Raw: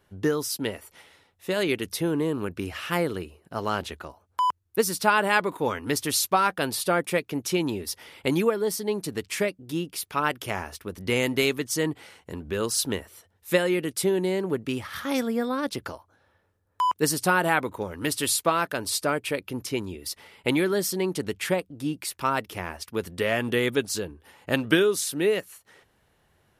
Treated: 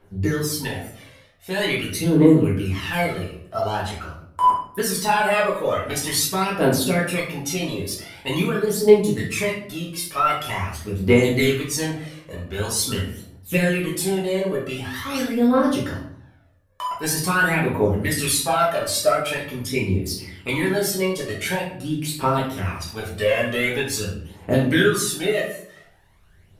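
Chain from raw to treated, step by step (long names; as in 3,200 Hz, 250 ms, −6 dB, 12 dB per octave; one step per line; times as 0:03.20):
in parallel at −2 dB: brickwall limiter −16 dBFS, peak gain reduction 10.5 dB
on the sum: phase shifter 0.45 Hz, delay 1.9 ms, feedback 72%
rectangular room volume 100 cubic metres, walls mixed, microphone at 1.6 metres
level −9.5 dB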